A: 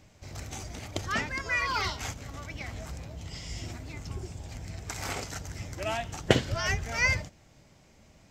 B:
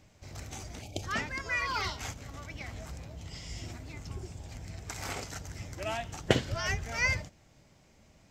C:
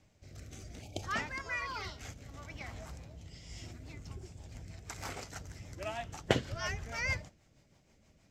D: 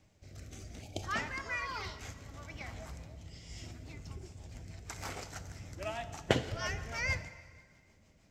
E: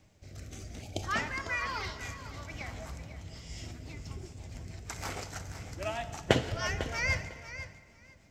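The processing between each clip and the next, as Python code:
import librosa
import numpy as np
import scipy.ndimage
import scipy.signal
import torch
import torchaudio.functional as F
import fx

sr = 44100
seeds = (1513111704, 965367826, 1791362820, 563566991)

y1 = fx.spec_box(x, sr, start_s=0.82, length_s=0.21, low_hz=870.0, high_hz=2200.0, gain_db=-19)
y1 = y1 * librosa.db_to_amplitude(-3.0)
y2 = fx.rotary_switch(y1, sr, hz=0.65, then_hz=6.3, switch_at_s=3.24)
y2 = fx.dynamic_eq(y2, sr, hz=980.0, q=1.0, threshold_db=-52.0, ratio=4.0, max_db=4)
y2 = y2 * librosa.db_to_amplitude(-3.5)
y3 = fx.rev_plate(y2, sr, seeds[0], rt60_s=1.9, hf_ratio=0.8, predelay_ms=0, drr_db=11.5)
y4 = fx.echo_feedback(y3, sr, ms=500, feedback_pct=16, wet_db=-12.5)
y4 = y4 * librosa.db_to_amplitude(3.5)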